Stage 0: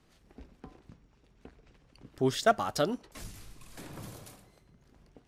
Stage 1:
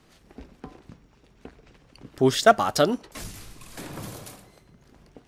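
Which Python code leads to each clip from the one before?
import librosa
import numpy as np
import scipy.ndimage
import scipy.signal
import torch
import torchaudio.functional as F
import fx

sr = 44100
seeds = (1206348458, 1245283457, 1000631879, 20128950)

y = fx.low_shelf(x, sr, hz=110.0, db=-5.0)
y = y * 10.0 ** (8.5 / 20.0)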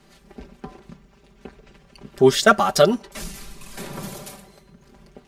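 y = x + 0.83 * np.pad(x, (int(5.1 * sr / 1000.0), 0))[:len(x)]
y = y * 10.0 ** (2.0 / 20.0)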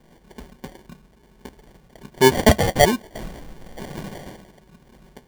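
y = fx.sample_hold(x, sr, seeds[0], rate_hz=1300.0, jitter_pct=0)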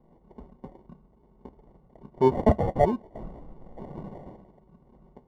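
y = scipy.signal.savgol_filter(x, 65, 4, mode='constant')
y = y * 10.0 ** (-5.5 / 20.0)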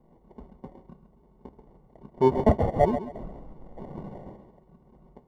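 y = fx.echo_feedback(x, sr, ms=134, feedback_pct=27, wet_db=-11.0)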